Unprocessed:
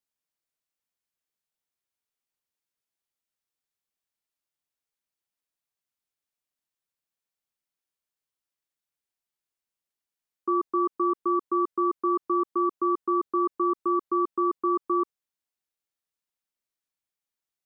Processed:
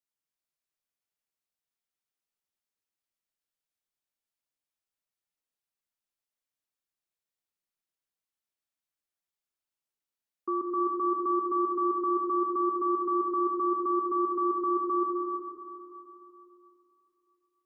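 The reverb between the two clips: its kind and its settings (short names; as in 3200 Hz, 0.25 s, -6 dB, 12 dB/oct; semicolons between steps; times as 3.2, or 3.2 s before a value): digital reverb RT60 3 s, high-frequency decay 0.9×, pre-delay 95 ms, DRR 1 dB; gain -5.5 dB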